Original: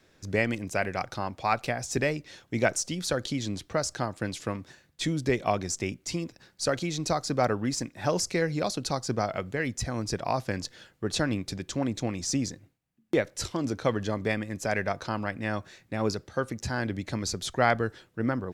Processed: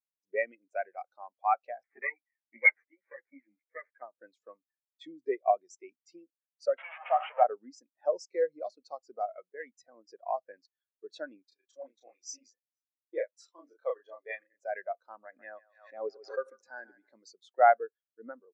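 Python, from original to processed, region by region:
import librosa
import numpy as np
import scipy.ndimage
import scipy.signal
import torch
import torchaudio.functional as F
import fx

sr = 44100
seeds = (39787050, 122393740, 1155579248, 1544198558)

y = fx.chain(x, sr, fx.lower_of_two(delay_ms=0.47),
    fx.high_shelf_res(hz=3100.0, db=-13.0, q=3.0),
    fx.ensemble(), at=(1.83, 4.02))
y = fx.chain(y, sr, fx.delta_mod(bps=16000, step_db=-22.0),
    fx.highpass(hz=580.0, slope=24),
    fx.leveller(passes=1), at=(6.78, 7.44))
y = fx.chain(y, sr, fx.highpass(hz=610.0, slope=6),
    fx.doubler(ms=34.0, db=-2.0),
    fx.echo_single(ms=476, db=-23.5), at=(11.48, 14.6))
y = fx.chain(y, sr, fx.highpass(hz=130.0, slope=6),
    fx.echo_thinned(ms=141, feedback_pct=42, hz=440.0, wet_db=-8),
    fx.pre_swell(db_per_s=45.0), at=(15.25, 17.13))
y = scipy.signal.sosfilt(scipy.signal.butter(2, 460.0, 'highpass', fs=sr, output='sos'), y)
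y = fx.spectral_expand(y, sr, expansion=2.5)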